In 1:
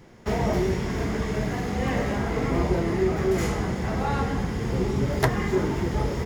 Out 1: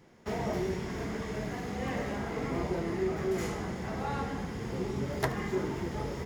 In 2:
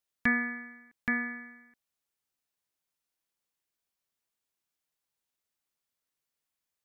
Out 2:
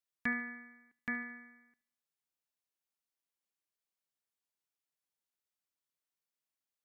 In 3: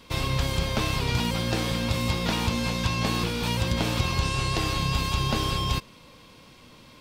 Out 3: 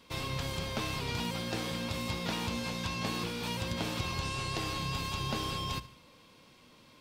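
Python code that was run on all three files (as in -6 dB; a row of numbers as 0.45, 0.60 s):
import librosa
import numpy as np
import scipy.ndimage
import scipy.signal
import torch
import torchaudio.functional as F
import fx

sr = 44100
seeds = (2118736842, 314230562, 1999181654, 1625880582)

p1 = fx.low_shelf(x, sr, hz=69.0, db=-8.5)
p2 = fx.hum_notches(p1, sr, base_hz=60, count=2)
p3 = p2 + fx.echo_feedback(p2, sr, ms=74, feedback_pct=46, wet_db=-17.5, dry=0)
y = p3 * librosa.db_to_amplitude(-7.5)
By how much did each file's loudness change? -8.5, -7.5, -8.5 LU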